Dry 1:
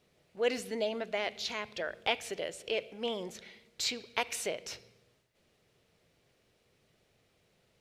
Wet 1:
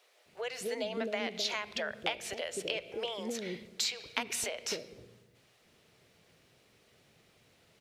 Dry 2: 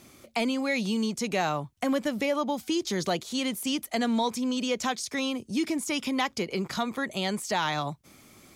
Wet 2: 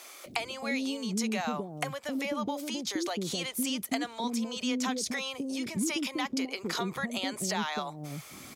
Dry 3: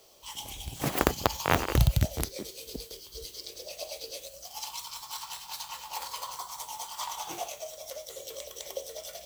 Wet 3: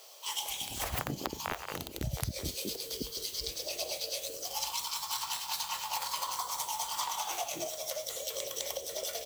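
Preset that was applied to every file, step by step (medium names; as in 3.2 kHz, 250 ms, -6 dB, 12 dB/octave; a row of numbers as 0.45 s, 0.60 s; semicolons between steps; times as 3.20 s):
bass shelf 64 Hz -10.5 dB; compression 16:1, threshold -36 dBFS; bands offset in time highs, lows 260 ms, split 490 Hz; peak normalisation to -12 dBFS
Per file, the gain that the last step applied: +7.0 dB, +8.0 dB, +6.0 dB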